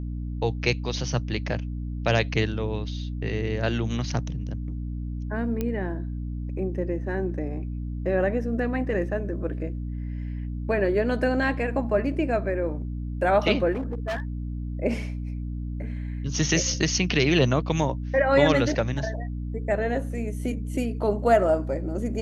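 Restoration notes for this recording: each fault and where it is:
mains hum 60 Hz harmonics 5 −31 dBFS
0:05.61: click −15 dBFS
0:13.72–0:14.22: clipping −25 dBFS

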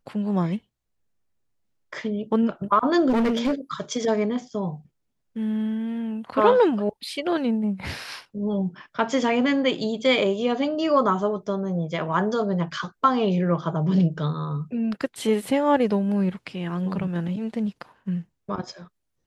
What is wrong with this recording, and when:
0:03.09–0:03.54: clipping −18.5 dBFS

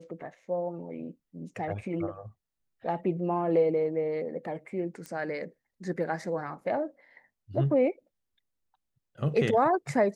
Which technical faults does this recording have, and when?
0:05.06: click −25 dBFS

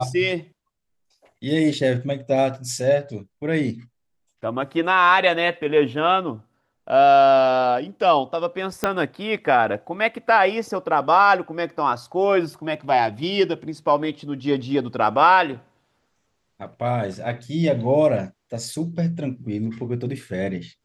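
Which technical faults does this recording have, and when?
0:08.84: click −6 dBFS

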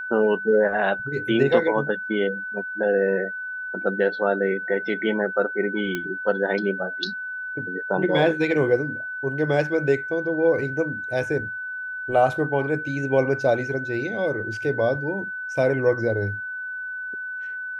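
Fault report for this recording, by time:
whistle 1,500 Hz −29 dBFS
0:05.95: click −13 dBFS

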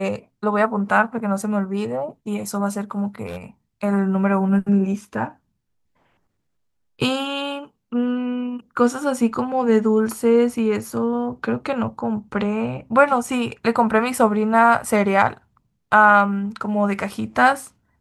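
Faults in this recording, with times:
0:03.26–0:03.44: clipping −27 dBFS

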